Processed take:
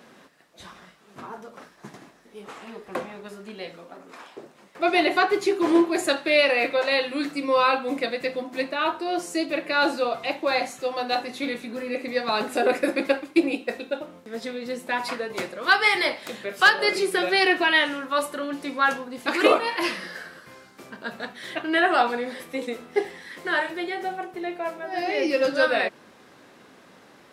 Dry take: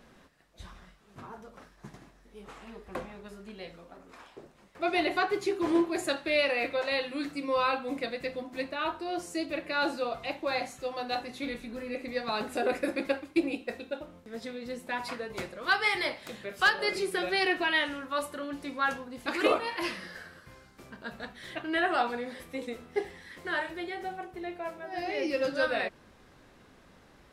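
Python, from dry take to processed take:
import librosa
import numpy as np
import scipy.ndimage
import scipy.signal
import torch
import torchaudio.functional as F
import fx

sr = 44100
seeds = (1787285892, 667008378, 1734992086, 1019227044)

y = scipy.signal.sosfilt(scipy.signal.butter(2, 200.0, 'highpass', fs=sr, output='sos'), x)
y = y * librosa.db_to_amplitude(7.5)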